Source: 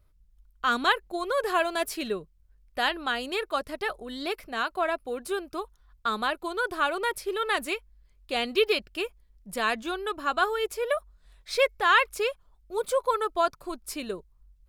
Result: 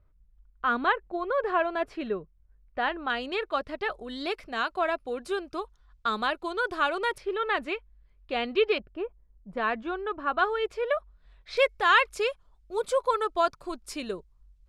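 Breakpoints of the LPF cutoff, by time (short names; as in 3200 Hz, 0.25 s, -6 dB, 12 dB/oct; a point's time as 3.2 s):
1900 Hz
from 3.1 s 3700 Hz
from 3.92 s 6300 Hz
from 7.18 s 2700 Hz
from 8.78 s 1000 Hz
from 9.57 s 1900 Hz
from 10.39 s 3200 Hz
from 11.57 s 7700 Hz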